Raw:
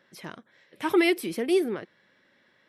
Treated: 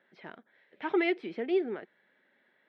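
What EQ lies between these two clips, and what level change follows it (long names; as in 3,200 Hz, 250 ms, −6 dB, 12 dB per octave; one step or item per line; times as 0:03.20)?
loudspeaker in its box 310–3,500 Hz, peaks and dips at 320 Hz −5 dB, 530 Hz −6 dB, 1,100 Hz −9 dB, 2,800 Hz −3 dB
high-shelf EQ 2,200 Hz −9 dB
0.0 dB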